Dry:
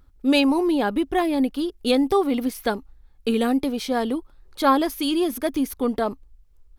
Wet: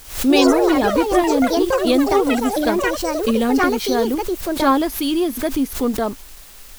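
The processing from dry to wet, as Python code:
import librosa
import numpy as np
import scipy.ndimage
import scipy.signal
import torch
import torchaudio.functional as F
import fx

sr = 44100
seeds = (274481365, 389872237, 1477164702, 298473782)

p1 = fx.low_shelf(x, sr, hz=220.0, db=5.5)
p2 = fx.quant_dither(p1, sr, seeds[0], bits=6, dither='triangular')
p3 = p1 + F.gain(torch.from_numpy(p2), -4.0).numpy()
p4 = fx.echo_pitch(p3, sr, ms=115, semitones=5, count=3, db_per_echo=-3.0)
p5 = fx.pre_swell(p4, sr, db_per_s=120.0)
y = F.gain(torch.from_numpy(p5), -3.0).numpy()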